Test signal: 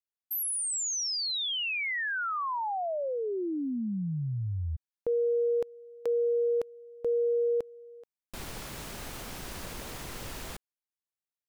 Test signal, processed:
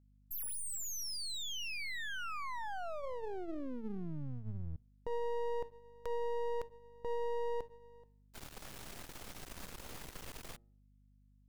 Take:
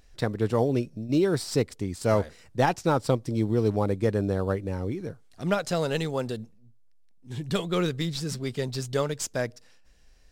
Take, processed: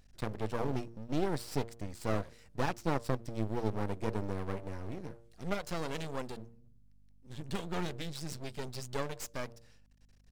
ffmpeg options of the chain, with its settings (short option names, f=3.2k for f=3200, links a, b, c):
-af "bandreject=f=116:t=h:w=4,bandreject=f=232:t=h:w=4,bandreject=f=348:t=h:w=4,bandreject=f=464:t=h:w=4,bandreject=f=580:t=h:w=4,aeval=exprs='max(val(0),0)':c=same,aeval=exprs='val(0)+0.001*(sin(2*PI*50*n/s)+sin(2*PI*2*50*n/s)/2+sin(2*PI*3*50*n/s)/3+sin(2*PI*4*50*n/s)/4+sin(2*PI*5*50*n/s)/5)':c=same,volume=-5dB"